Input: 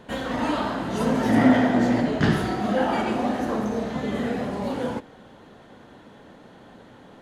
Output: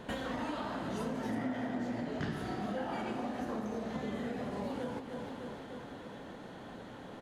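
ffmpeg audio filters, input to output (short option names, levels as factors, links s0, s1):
-af "aecho=1:1:302|604|906|1208|1510|1812:0.2|0.114|0.0648|0.037|0.0211|0.012,acompressor=threshold=0.0158:ratio=5"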